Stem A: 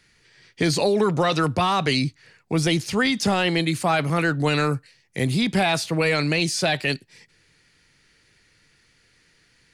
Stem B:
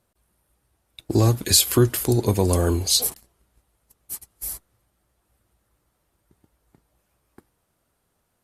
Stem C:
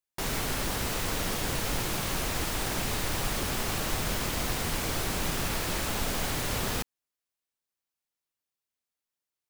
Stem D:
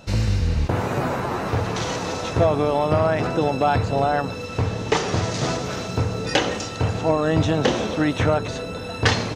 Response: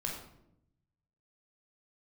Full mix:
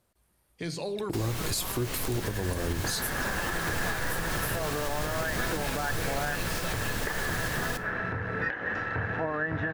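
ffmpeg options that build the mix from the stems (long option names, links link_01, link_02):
-filter_complex "[0:a]agate=range=-16dB:threshold=-49dB:ratio=16:detection=peak,volume=-16dB,asplit=2[link_01][link_02];[link_02]volume=-10.5dB[link_03];[1:a]volume=-1.5dB[link_04];[2:a]adelay=950,volume=0dB,asplit=2[link_05][link_06];[link_06]volume=-10.5dB[link_07];[3:a]acrusher=bits=6:dc=4:mix=0:aa=0.000001,lowpass=frequency=1700:width_type=q:width=13,acompressor=threshold=-15dB:ratio=6,adelay=2150,volume=-6.5dB[link_08];[4:a]atrim=start_sample=2205[link_09];[link_03][link_07]amix=inputs=2:normalize=0[link_10];[link_10][link_09]afir=irnorm=-1:irlink=0[link_11];[link_01][link_04][link_05][link_08][link_11]amix=inputs=5:normalize=0,alimiter=limit=-20dB:level=0:latency=1:release=288"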